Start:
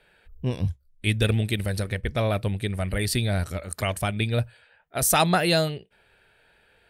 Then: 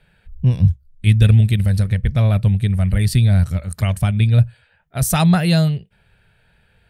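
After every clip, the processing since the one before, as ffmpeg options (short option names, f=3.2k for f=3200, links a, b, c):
-af "lowshelf=f=230:t=q:w=1.5:g=11"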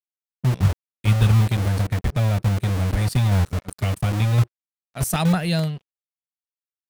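-filter_complex "[0:a]acrossover=split=120[a][b];[a]acrusher=bits=3:mix=0:aa=0.000001[c];[b]aeval=exprs='sgn(val(0))*max(abs(val(0))-0.0141,0)':c=same[d];[c][d]amix=inputs=2:normalize=0,volume=-4.5dB"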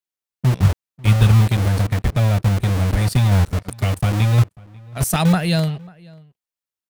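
-filter_complex "[0:a]asplit=2[a][b];[b]adelay=542.3,volume=-24dB,highshelf=f=4k:g=-12.2[c];[a][c]amix=inputs=2:normalize=0,volume=3.5dB"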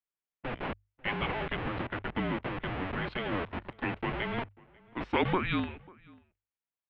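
-af "highpass=f=380:t=q:w=0.5412,highpass=f=380:t=q:w=1.307,lowpass=f=3.3k:t=q:w=0.5176,lowpass=f=3.3k:t=q:w=0.7071,lowpass=f=3.3k:t=q:w=1.932,afreqshift=-370,bandreject=f=50:t=h:w=6,bandreject=f=100:t=h:w=6,volume=-4dB"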